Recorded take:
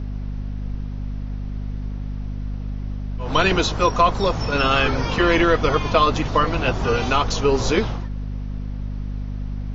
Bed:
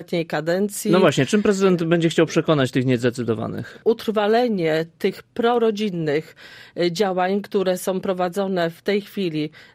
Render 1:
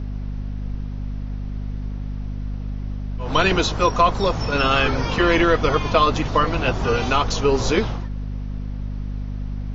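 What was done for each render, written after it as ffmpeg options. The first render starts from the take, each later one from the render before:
-af anull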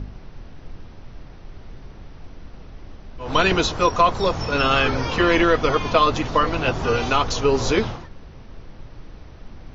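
-af "bandreject=f=50:t=h:w=4,bandreject=f=100:t=h:w=4,bandreject=f=150:t=h:w=4,bandreject=f=200:t=h:w=4,bandreject=f=250:t=h:w=4"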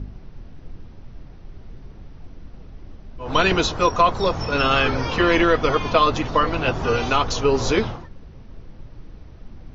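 -af "afftdn=nr=6:nf=-42"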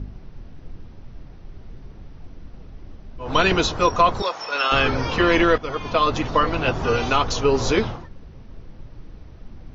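-filter_complex "[0:a]asettb=1/sr,asplit=3[a][b][c];[a]atrim=end=4.224[d];[b]atrim=start=4.22:end=4.72,asetpts=PTS-STARTPTS,afade=t=in:d=0.004:c=qsin,afade=t=out:st=0.496:d=0.004:c=qsin,highpass=690[e];[c]atrim=start=4.716[f];[d][e]acrossfade=d=0.004:c1=hsin:c2=qsin[g];[g][f]acrossfade=d=0.004:c1=qsin:c2=hsin,asplit=2[h][i];[h]atrim=end=5.58,asetpts=PTS-STARTPTS,afade=t=out:st=5.576:d=0.004:c=hsin:silence=0.223872[j];[i]atrim=start=5.58,asetpts=PTS-STARTPTS,afade=t=in:d=0.63:silence=0.223872[k];[j][k]concat=n=2:v=0:a=1"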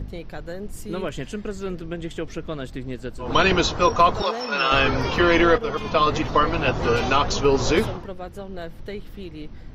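-filter_complex "[1:a]volume=-13.5dB[a];[0:a][a]amix=inputs=2:normalize=0"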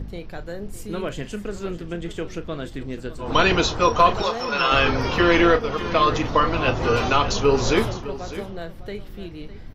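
-filter_complex "[0:a]asplit=2[a][b];[b]adelay=35,volume=-12dB[c];[a][c]amix=inputs=2:normalize=0,aecho=1:1:606:0.188"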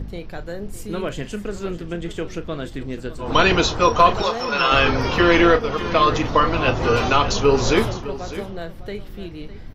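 -af "volume=2dB"

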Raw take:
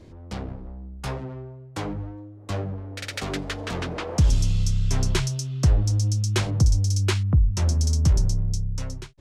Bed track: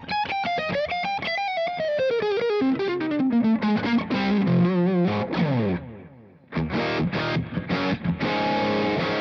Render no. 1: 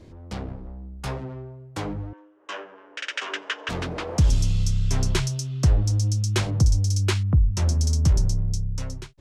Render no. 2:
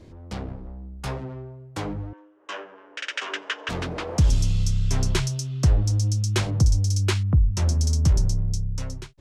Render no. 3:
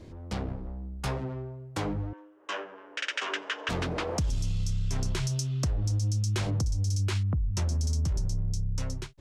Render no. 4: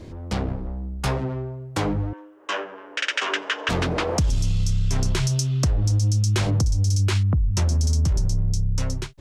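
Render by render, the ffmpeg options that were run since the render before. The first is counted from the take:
-filter_complex "[0:a]asettb=1/sr,asplit=3[a][b][c];[a]atrim=end=2.134[d];[b]atrim=start=2.13:end=3.69,asetpts=PTS-STARTPTS,afade=t=in:d=0.004:c=qsin,afade=t=out:st=1.556:d=0.004:c=qsin,highpass=f=410:w=0.5412,highpass=f=410:w=1.3066,equalizer=f=490:t=q:w=4:g=-5,equalizer=f=730:t=q:w=4:g=-9,equalizer=f=1k:t=q:w=4:g=5,equalizer=f=1.6k:t=q:w=4:g=8,equalizer=f=2.9k:t=q:w=4:g=9,equalizer=f=4.3k:t=q:w=4:g=-9,lowpass=f=6.7k:w=0.5412,lowpass=f=6.7k:w=1.3066[e];[c]atrim=start=3.686[f];[d][e]acrossfade=d=0.004:c1=hsin:c2=qsin[g];[g][f]acrossfade=d=0.004:c1=qsin:c2=hsin"
-af anull
-af "alimiter=limit=-17.5dB:level=0:latency=1:release=46,acompressor=threshold=-25dB:ratio=6"
-af "volume=7.5dB"

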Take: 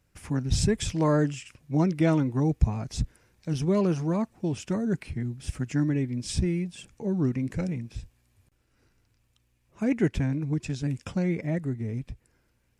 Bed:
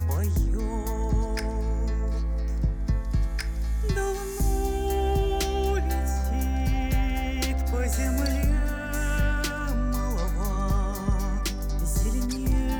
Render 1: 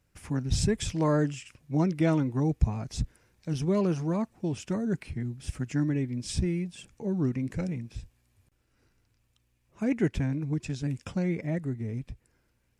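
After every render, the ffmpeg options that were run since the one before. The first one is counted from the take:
-af "volume=-2dB"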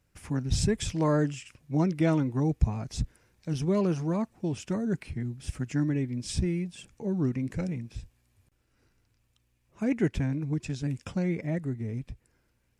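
-af anull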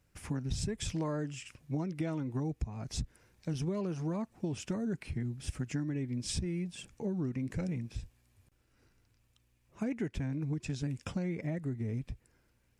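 -af "acompressor=threshold=-31dB:ratio=12"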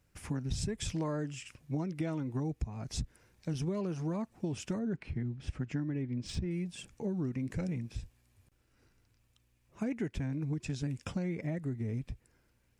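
-filter_complex "[0:a]asettb=1/sr,asplit=3[a][b][c];[a]atrim=end=4.794[d];[b]atrim=start=4.79:end=6.51,asetpts=PTS-STARTPTS,afade=t=in:d=0.004:c=qsin,afade=t=out:st=1.716:d=0.004:c=qsin,adynamicsmooth=sensitivity=3:basefreq=3.9k[e];[c]atrim=start=6.506[f];[d][e]acrossfade=d=0.004:c1=hsin:c2=qsin[g];[g][f]acrossfade=d=0.004:c1=qsin:c2=hsin"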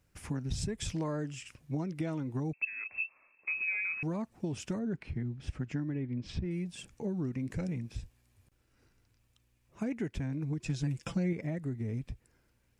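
-filter_complex "[0:a]asettb=1/sr,asplit=3[a][b][c];[a]atrim=end=2.534[d];[b]atrim=start=2.53:end=4.03,asetpts=PTS-STARTPTS,afade=t=in:d=0.004:c=qsin,afade=t=out:st=1.496:d=0.004:c=qsin,lowpass=f=2.3k:t=q:w=0.5098,lowpass=f=2.3k:t=q:w=0.6013,lowpass=f=2.3k:t=q:w=0.9,lowpass=f=2.3k:t=q:w=2.563,afreqshift=-2700[e];[c]atrim=start=4.026[f];[d][e]acrossfade=d=0.004:c1=hsin:c2=qsin[g];[g][f]acrossfade=d=0.004:c1=qsin:c2=hsin,asettb=1/sr,asplit=3[h][i][j];[h]atrim=end=5.954[k];[i]atrim=start=5.95:end=6.45,asetpts=PTS-STARTPTS,afade=t=in:d=0.004:c=qsin,afade=t=out:st=0.496:d=0.004:c=qsin,lowpass=4.1k[l];[j]atrim=start=6.446[m];[k][l]acrossfade=d=0.004:c1=hsin:c2=qsin[n];[n][m]acrossfade=d=0.004:c1=qsin:c2=hsin,asettb=1/sr,asplit=3[o][p][q];[o]atrim=end=10.654[r];[p]atrim=start=10.65:end=11.33,asetpts=PTS-STARTPTS,afade=t=in:d=0.004:c=qsin,afade=t=out:st=0.676:d=0.004:c=qsin,aecho=1:1:6:0.68,atrim=end_sample=29988[s];[q]atrim=start=11.326[t];[r][s]acrossfade=d=0.004:c1=hsin:c2=qsin[u];[u][t]acrossfade=d=0.004:c1=qsin:c2=hsin"

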